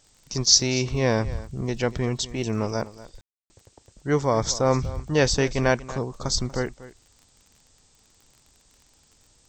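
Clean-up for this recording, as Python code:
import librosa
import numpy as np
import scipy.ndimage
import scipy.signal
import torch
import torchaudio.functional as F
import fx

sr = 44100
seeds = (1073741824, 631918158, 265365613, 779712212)

y = fx.fix_declick_ar(x, sr, threshold=6.5)
y = fx.fix_ambience(y, sr, seeds[0], print_start_s=7.75, print_end_s=8.25, start_s=3.21, end_s=3.5)
y = fx.noise_reduce(y, sr, print_start_s=7.75, print_end_s=8.25, reduce_db=9.0)
y = fx.fix_echo_inverse(y, sr, delay_ms=239, level_db=-17.0)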